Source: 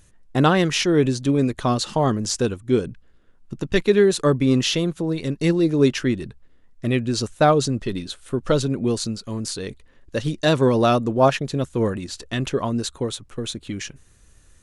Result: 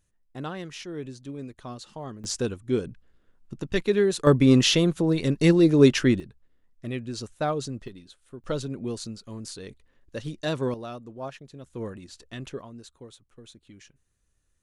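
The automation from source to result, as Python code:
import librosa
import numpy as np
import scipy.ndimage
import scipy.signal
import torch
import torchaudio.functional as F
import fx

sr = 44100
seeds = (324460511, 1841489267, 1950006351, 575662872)

y = fx.gain(x, sr, db=fx.steps((0.0, -18.0), (2.24, -6.0), (4.27, 1.0), (6.2, -11.0), (7.88, -18.0), (8.44, -10.0), (10.74, -20.0), (11.66, -13.0), (12.61, -20.0)))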